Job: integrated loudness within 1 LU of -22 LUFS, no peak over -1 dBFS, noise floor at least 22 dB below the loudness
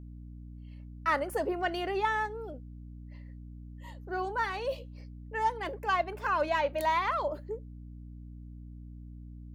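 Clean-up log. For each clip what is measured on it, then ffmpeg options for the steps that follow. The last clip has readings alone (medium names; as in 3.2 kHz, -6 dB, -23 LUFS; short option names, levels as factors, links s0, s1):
hum 60 Hz; highest harmonic 300 Hz; hum level -43 dBFS; loudness -31.5 LUFS; peak level -15.5 dBFS; loudness target -22.0 LUFS
-> -af "bandreject=f=60:t=h:w=4,bandreject=f=120:t=h:w=4,bandreject=f=180:t=h:w=4,bandreject=f=240:t=h:w=4,bandreject=f=300:t=h:w=4"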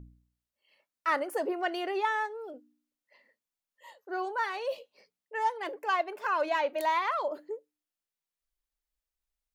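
hum not found; loudness -31.5 LUFS; peak level -15.5 dBFS; loudness target -22.0 LUFS
-> -af "volume=2.99"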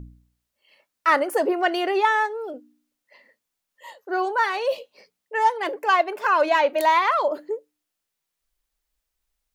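loudness -22.0 LUFS; peak level -6.0 dBFS; noise floor -82 dBFS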